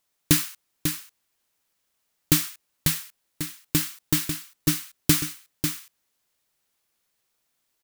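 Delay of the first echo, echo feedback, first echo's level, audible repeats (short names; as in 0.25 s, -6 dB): 0.545 s, no steady repeat, -7.0 dB, 1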